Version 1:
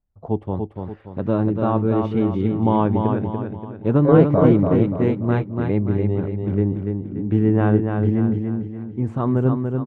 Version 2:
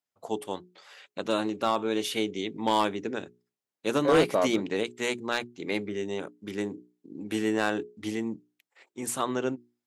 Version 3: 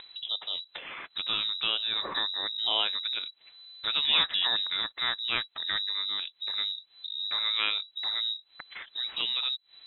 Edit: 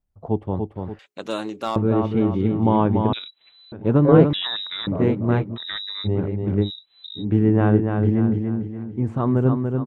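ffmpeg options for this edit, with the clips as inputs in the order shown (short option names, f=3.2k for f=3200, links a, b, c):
-filter_complex "[2:a]asplit=4[a][b][c][d];[0:a]asplit=6[e][f][g][h][i][j];[e]atrim=end=0.992[k];[1:a]atrim=start=0.988:end=1.762[l];[f]atrim=start=1.758:end=3.132[m];[a]atrim=start=3.128:end=3.722[n];[g]atrim=start=3.718:end=4.332[o];[b]atrim=start=4.328:end=4.872[p];[h]atrim=start=4.868:end=5.58[q];[c]atrim=start=5.54:end=6.08[r];[i]atrim=start=6.04:end=6.71[s];[d]atrim=start=6.61:end=7.25[t];[j]atrim=start=7.15[u];[k][l]acrossfade=d=0.004:c1=hsin:c2=hsin[v];[v][m]acrossfade=d=0.004:c1=hsin:c2=hsin[w];[w][n]acrossfade=d=0.004:c1=hsin:c2=hsin[x];[x][o]acrossfade=d=0.004:c1=hsin:c2=hsin[y];[y][p]acrossfade=d=0.004:c1=hsin:c2=hsin[z];[z][q]acrossfade=d=0.004:c1=hsin:c2=hsin[aa];[aa][r]acrossfade=d=0.04:c1=tri:c2=tri[ab];[ab][s]acrossfade=d=0.04:c1=tri:c2=tri[ac];[ac][t]acrossfade=d=0.1:c1=tri:c2=tri[ad];[ad][u]acrossfade=d=0.1:c1=tri:c2=tri"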